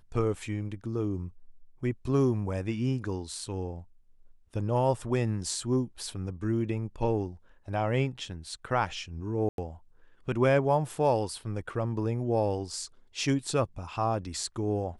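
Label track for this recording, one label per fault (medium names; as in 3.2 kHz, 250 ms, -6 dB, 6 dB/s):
9.490000	9.580000	dropout 92 ms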